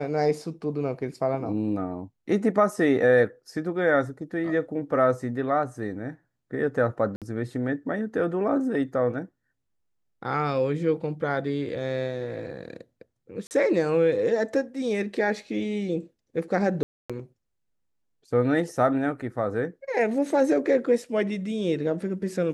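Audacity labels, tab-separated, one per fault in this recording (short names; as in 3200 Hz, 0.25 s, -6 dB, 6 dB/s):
7.160000	7.220000	gap 57 ms
13.470000	13.510000	gap 39 ms
16.830000	17.100000	gap 0.266 s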